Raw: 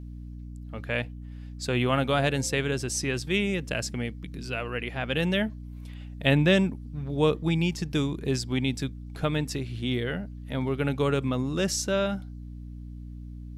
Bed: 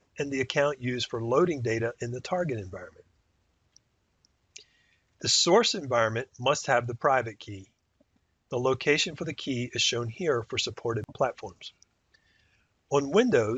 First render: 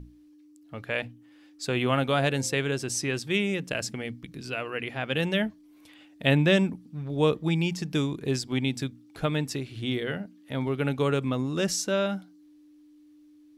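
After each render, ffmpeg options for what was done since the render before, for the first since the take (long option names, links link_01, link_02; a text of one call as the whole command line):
ffmpeg -i in.wav -af "bandreject=frequency=60:width_type=h:width=6,bandreject=frequency=120:width_type=h:width=6,bandreject=frequency=180:width_type=h:width=6,bandreject=frequency=240:width_type=h:width=6" out.wav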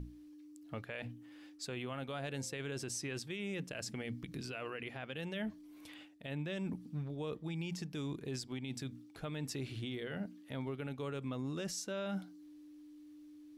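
ffmpeg -i in.wav -af "areverse,acompressor=threshold=-33dB:ratio=16,areverse,alimiter=level_in=8dB:limit=-24dB:level=0:latency=1:release=90,volume=-8dB" out.wav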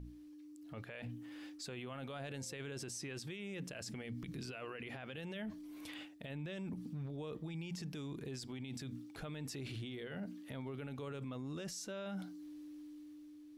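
ffmpeg -i in.wav -af "alimiter=level_in=18dB:limit=-24dB:level=0:latency=1:release=32,volume=-18dB,dynaudnorm=framelen=120:gausssize=13:maxgain=5dB" out.wav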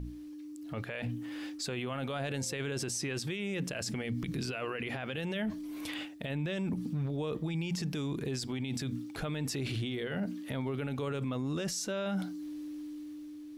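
ffmpeg -i in.wav -af "volume=9.5dB" out.wav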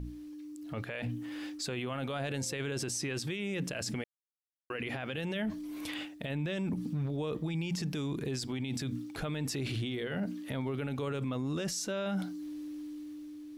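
ffmpeg -i in.wav -filter_complex "[0:a]asplit=3[link_01][link_02][link_03];[link_01]atrim=end=4.04,asetpts=PTS-STARTPTS,afade=type=out:start_time=4.036:duration=0.004:curve=hsin[link_04];[link_02]atrim=start=4.04:end=4.7,asetpts=PTS-STARTPTS,volume=0[link_05];[link_03]atrim=start=4.7,asetpts=PTS-STARTPTS,afade=type=in:duration=0.004:curve=hsin[link_06];[link_04][link_05][link_06]concat=n=3:v=0:a=1" out.wav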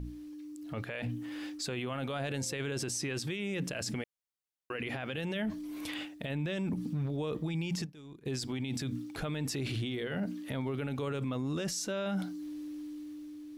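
ffmpeg -i in.wav -filter_complex "[0:a]asplit=3[link_01][link_02][link_03];[link_01]afade=type=out:start_time=7.84:duration=0.02[link_04];[link_02]agate=range=-33dB:threshold=-25dB:ratio=3:release=100:detection=peak,afade=type=in:start_time=7.84:duration=0.02,afade=type=out:start_time=8.25:duration=0.02[link_05];[link_03]afade=type=in:start_time=8.25:duration=0.02[link_06];[link_04][link_05][link_06]amix=inputs=3:normalize=0" out.wav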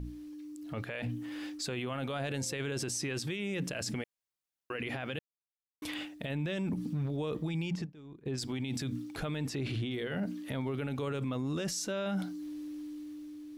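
ffmpeg -i in.wav -filter_complex "[0:a]asettb=1/sr,asplit=3[link_01][link_02][link_03];[link_01]atrim=end=7.704[link_04];[link_02]atrim=start=7.7:end=8.38,asetpts=PTS-STARTPTS,afade=type=in:duration=0.004:curve=qsin,afade=type=out:start_time=0.676:duration=0.004:curve=qsin,lowpass=frequency=1700:poles=1[link_05];[link_03]atrim=start=8.376[link_06];[link_04][link_05]acrossfade=duration=0.004:curve1=hsin:curve2=qsin[link_07];[link_07][link_06]acrossfade=duration=0.004:curve1=qsin:curve2=hsin,asettb=1/sr,asplit=3[link_08][link_09][link_10];[link_08]atrim=end=9.474[link_11];[link_09]atrim=start=9.47:end=9.91,asetpts=PTS-STARTPTS,afade=type=in:duration=0.004:curve=qsin,afade=type=out:start_time=0.436:duration=0.004:curve=qsin,aemphasis=mode=reproduction:type=cd[link_12];[link_10]atrim=start=9.906[link_13];[link_11][link_12]acrossfade=duration=0.004:curve1=hsin:curve2=qsin[link_14];[link_14][link_13]acrossfade=duration=0.004:curve1=qsin:curve2=hsin,asplit=3[link_15][link_16][link_17];[link_15]atrim=end=5.19,asetpts=PTS-STARTPTS,afade=type=out:start_time=5.186:duration=0.004:curve=hsin[link_18];[link_16]atrim=start=5.19:end=5.82,asetpts=PTS-STARTPTS,volume=0[link_19];[link_17]atrim=start=5.82,asetpts=PTS-STARTPTS,afade=type=in:duration=0.004:curve=hsin[link_20];[link_18][link_19][link_20]concat=n=3:v=0:a=1" out.wav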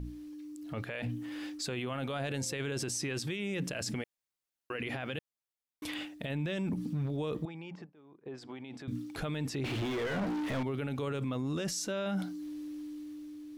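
ffmpeg -i in.wav -filter_complex "[0:a]asettb=1/sr,asplit=3[link_01][link_02][link_03];[link_01]atrim=end=7.454[link_04];[link_02]atrim=start=7.45:end=8.88,asetpts=PTS-STARTPTS,afade=type=in:duration=0.004:curve=qsin,afade=type=out:start_time=1.426:duration=0.004:curve=qsin,bandpass=frequency=830:width_type=q:width=0.87[link_05];[link_03]atrim=start=8.876[link_06];[link_04][link_05]acrossfade=duration=0.004:curve1=hsin:curve2=qsin[link_07];[link_07][link_06]acrossfade=duration=0.004:curve1=qsin:curve2=hsin,asettb=1/sr,asplit=3[link_08][link_09][link_10];[link_08]atrim=end=9.644[link_11];[link_09]atrim=start=9.64:end=10.63,asetpts=PTS-STARTPTS,afade=type=in:duration=0.004:curve=qsin,afade=type=out:start_time=0.986:duration=0.004:curve=qsin,asplit=2[link_12][link_13];[link_13]highpass=frequency=720:poles=1,volume=35dB,asoftclip=type=tanh:threshold=-27dB[link_14];[link_12][link_14]amix=inputs=2:normalize=0,lowpass=frequency=1400:poles=1,volume=-6dB[link_15];[link_10]atrim=start=10.626[link_16];[link_11][link_15]acrossfade=duration=0.004:curve1=hsin:curve2=qsin[link_17];[link_17][link_16]acrossfade=duration=0.004:curve1=qsin:curve2=hsin" out.wav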